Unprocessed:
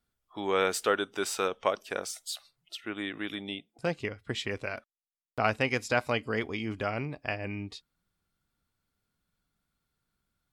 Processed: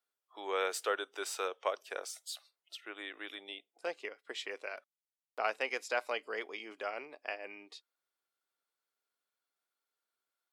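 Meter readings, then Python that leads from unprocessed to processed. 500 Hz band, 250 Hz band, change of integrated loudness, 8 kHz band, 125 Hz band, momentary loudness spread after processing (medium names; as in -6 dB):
-7.0 dB, -16.5 dB, -7.0 dB, -6.0 dB, under -35 dB, 14 LU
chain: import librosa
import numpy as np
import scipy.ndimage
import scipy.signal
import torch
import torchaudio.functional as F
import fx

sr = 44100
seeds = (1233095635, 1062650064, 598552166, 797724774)

y = scipy.signal.sosfilt(scipy.signal.butter(4, 400.0, 'highpass', fs=sr, output='sos'), x)
y = F.gain(torch.from_numpy(y), -6.0).numpy()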